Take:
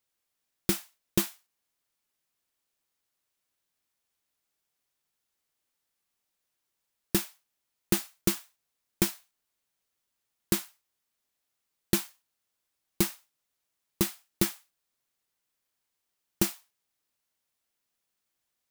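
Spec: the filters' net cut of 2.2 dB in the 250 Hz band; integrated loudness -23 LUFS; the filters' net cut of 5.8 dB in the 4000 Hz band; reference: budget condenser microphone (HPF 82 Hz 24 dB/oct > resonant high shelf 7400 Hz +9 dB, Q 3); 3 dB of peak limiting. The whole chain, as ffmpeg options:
-af "equalizer=f=250:t=o:g=-3.5,equalizer=f=4k:t=o:g=-3.5,alimiter=limit=-12.5dB:level=0:latency=1,highpass=f=82:w=0.5412,highpass=f=82:w=1.3066,highshelf=f=7.4k:t=q:w=3:g=9,volume=2dB"

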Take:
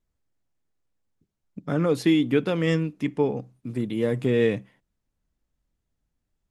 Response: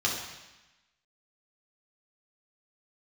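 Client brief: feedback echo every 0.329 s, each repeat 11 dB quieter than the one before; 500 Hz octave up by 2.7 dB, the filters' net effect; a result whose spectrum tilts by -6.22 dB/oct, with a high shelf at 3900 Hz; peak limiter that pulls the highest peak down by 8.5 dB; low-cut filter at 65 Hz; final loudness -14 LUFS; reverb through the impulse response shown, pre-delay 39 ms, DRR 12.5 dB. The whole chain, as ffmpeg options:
-filter_complex "[0:a]highpass=65,equalizer=f=500:t=o:g=3,highshelf=f=3.9k:g=6.5,alimiter=limit=-17dB:level=0:latency=1,aecho=1:1:329|658|987:0.282|0.0789|0.0221,asplit=2[a][b];[1:a]atrim=start_sample=2205,adelay=39[c];[b][c]afir=irnorm=-1:irlink=0,volume=-22.5dB[d];[a][d]amix=inputs=2:normalize=0,volume=13.5dB"

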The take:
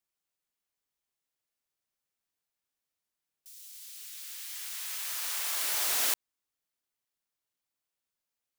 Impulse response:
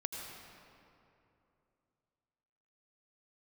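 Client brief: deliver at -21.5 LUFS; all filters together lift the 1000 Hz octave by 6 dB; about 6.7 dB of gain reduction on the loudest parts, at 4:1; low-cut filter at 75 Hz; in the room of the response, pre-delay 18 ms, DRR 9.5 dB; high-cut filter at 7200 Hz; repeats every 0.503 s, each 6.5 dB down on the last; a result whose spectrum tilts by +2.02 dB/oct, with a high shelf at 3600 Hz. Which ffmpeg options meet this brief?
-filter_complex "[0:a]highpass=75,lowpass=7.2k,equalizer=f=1k:t=o:g=7,highshelf=f=3.6k:g=5,acompressor=threshold=-34dB:ratio=4,aecho=1:1:503|1006|1509|2012|2515|3018:0.473|0.222|0.105|0.0491|0.0231|0.0109,asplit=2[a][b];[1:a]atrim=start_sample=2205,adelay=18[c];[b][c]afir=irnorm=-1:irlink=0,volume=-10.5dB[d];[a][d]amix=inputs=2:normalize=0,volume=15.5dB"

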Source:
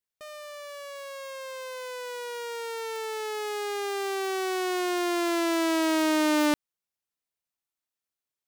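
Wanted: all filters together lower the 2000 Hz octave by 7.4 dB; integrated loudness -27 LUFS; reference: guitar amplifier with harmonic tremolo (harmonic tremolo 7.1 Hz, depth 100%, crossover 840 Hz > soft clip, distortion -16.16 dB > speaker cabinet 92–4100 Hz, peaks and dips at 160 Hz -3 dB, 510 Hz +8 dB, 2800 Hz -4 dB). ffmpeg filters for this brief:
-filter_complex "[0:a]equalizer=f=2k:t=o:g=-9,acrossover=split=840[a][b];[a]aeval=exprs='val(0)*(1-1/2+1/2*cos(2*PI*7.1*n/s))':c=same[c];[b]aeval=exprs='val(0)*(1-1/2-1/2*cos(2*PI*7.1*n/s))':c=same[d];[c][d]amix=inputs=2:normalize=0,asoftclip=threshold=-25dB,highpass=92,equalizer=f=160:t=q:w=4:g=-3,equalizer=f=510:t=q:w=4:g=8,equalizer=f=2.8k:t=q:w=4:g=-4,lowpass=f=4.1k:w=0.5412,lowpass=f=4.1k:w=1.3066,volume=8.5dB"

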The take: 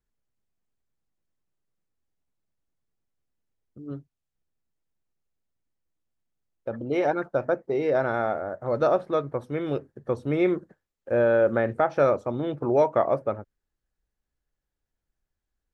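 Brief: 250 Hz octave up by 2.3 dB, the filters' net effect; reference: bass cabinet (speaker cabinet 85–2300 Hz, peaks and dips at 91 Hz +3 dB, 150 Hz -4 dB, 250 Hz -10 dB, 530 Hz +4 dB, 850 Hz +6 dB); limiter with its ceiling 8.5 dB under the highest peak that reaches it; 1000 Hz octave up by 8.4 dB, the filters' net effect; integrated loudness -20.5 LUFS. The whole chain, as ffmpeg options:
-af "equalizer=f=250:t=o:g=7,equalizer=f=1k:t=o:g=6.5,alimiter=limit=-14dB:level=0:latency=1,highpass=f=85:w=0.5412,highpass=f=85:w=1.3066,equalizer=f=91:t=q:w=4:g=3,equalizer=f=150:t=q:w=4:g=-4,equalizer=f=250:t=q:w=4:g=-10,equalizer=f=530:t=q:w=4:g=4,equalizer=f=850:t=q:w=4:g=6,lowpass=f=2.3k:w=0.5412,lowpass=f=2.3k:w=1.3066,volume=3.5dB"

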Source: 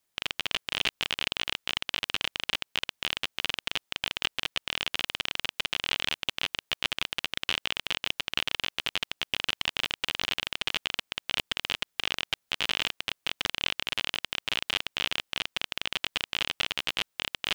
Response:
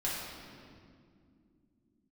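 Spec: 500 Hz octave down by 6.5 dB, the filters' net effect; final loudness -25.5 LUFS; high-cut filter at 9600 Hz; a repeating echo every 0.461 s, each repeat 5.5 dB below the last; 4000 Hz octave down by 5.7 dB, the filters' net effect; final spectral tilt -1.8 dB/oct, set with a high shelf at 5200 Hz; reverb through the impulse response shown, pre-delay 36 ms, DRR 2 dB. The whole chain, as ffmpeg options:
-filter_complex "[0:a]lowpass=9.6k,equalizer=f=500:t=o:g=-8.5,equalizer=f=4k:t=o:g=-6.5,highshelf=f=5.2k:g=-4.5,aecho=1:1:461|922|1383|1844|2305|2766|3227:0.531|0.281|0.149|0.079|0.0419|0.0222|0.0118,asplit=2[a][b];[1:a]atrim=start_sample=2205,adelay=36[c];[b][c]afir=irnorm=-1:irlink=0,volume=-7.5dB[d];[a][d]amix=inputs=2:normalize=0,volume=6dB"

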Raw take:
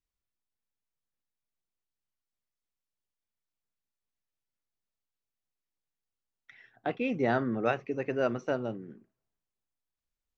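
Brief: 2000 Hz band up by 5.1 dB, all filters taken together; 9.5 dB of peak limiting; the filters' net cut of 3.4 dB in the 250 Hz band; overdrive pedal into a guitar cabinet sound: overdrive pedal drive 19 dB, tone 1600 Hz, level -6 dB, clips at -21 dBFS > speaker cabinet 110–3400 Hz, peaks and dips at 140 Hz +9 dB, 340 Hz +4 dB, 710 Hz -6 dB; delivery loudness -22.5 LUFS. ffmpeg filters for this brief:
-filter_complex "[0:a]equalizer=f=250:t=o:g=-6,equalizer=f=2k:t=o:g=7.5,alimiter=limit=-21dB:level=0:latency=1,asplit=2[a][b];[b]highpass=f=720:p=1,volume=19dB,asoftclip=type=tanh:threshold=-21dB[c];[a][c]amix=inputs=2:normalize=0,lowpass=f=1.6k:p=1,volume=-6dB,highpass=110,equalizer=f=140:t=q:w=4:g=9,equalizer=f=340:t=q:w=4:g=4,equalizer=f=710:t=q:w=4:g=-6,lowpass=f=3.4k:w=0.5412,lowpass=f=3.4k:w=1.3066,volume=10dB"

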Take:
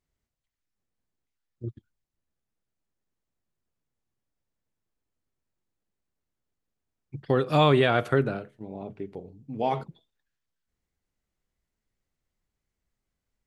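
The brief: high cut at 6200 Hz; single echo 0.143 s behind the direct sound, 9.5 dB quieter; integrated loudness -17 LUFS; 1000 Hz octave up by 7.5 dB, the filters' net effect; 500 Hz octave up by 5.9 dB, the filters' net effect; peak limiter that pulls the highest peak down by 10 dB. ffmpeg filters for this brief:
-af "lowpass=6.2k,equalizer=f=500:t=o:g=5.5,equalizer=f=1k:t=o:g=8,alimiter=limit=-13dB:level=0:latency=1,aecho=1:1:143:0.335,volume=9dB"

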